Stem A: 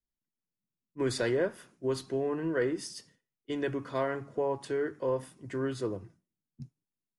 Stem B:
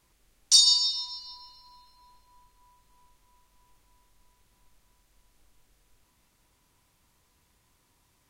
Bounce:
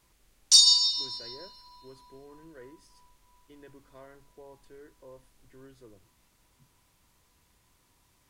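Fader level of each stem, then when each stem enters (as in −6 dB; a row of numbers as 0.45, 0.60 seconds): −20.0, +1.0 decibels; 0.00, 0.00 seconds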